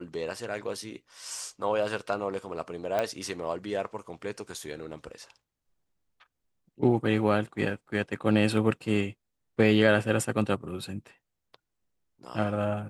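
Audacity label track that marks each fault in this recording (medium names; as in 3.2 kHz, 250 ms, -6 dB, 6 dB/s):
2.990000	2.990000	pop -15 dBFS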